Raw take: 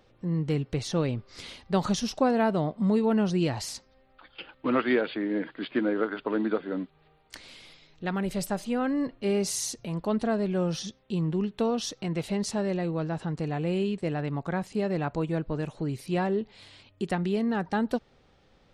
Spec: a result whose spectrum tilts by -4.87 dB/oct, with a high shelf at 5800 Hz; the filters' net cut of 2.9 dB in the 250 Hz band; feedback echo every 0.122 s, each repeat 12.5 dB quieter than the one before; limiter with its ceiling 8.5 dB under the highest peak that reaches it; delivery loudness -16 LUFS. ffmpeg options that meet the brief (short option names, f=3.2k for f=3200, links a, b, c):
-af "equalizer=f=250:t=o:g=-4,highshelf=f=5.8k:g=6.5,alimiter=limit=-22dB:level=0:latency=1,aecho=1:1:122|244|366:0.237|0.0569|0.0137,volume=16dB"